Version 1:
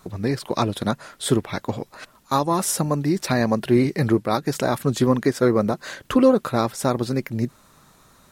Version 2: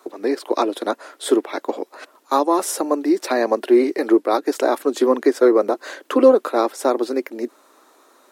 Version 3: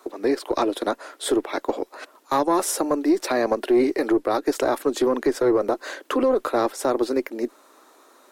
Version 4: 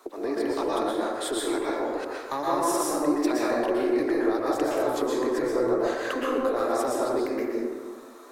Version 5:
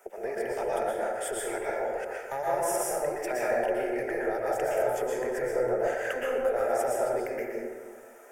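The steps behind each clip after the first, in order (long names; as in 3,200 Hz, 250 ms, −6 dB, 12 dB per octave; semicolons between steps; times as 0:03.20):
Butterworth high-pass 290 Hz 48 dB per octave; tilt shelving filter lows +4.5 dB, about 1,100 Hz; level +2.5 dB
one-sided soft clipper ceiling −4.5 dBFS; brickwall limiter −11 dBFS, peak gain reduction 9 dB
downward compressor 2 to 1, threshold −31 dBFS, peak gain reduction 9 dB; dense smooth reverb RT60 1.6 s, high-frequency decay 0.45×, pre-delay 105 ms, DRR −5 dB; level −2.5 dB
phaser with its sweep stopped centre 1,100 Hz, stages 6; level +1 dB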